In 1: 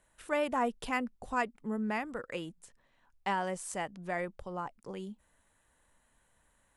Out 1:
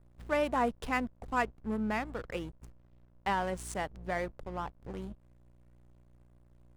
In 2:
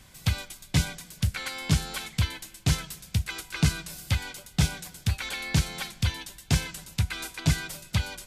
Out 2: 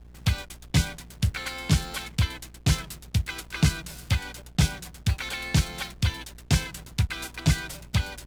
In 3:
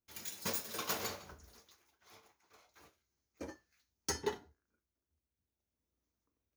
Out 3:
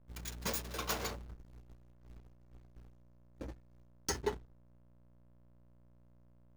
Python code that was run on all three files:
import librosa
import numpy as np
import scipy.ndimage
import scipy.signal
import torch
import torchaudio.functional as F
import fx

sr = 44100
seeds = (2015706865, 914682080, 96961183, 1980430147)

y = fx.dmg_buzz(x, sr, base_hz=60.0, harmonics=7, level_db=-48.0, tilt_db=-8, odd_only=False)
y = fx.backlash(y, sr, play_db=-39.0)
y = F.gain(torch.from_numpy(y), 1.5).numpy()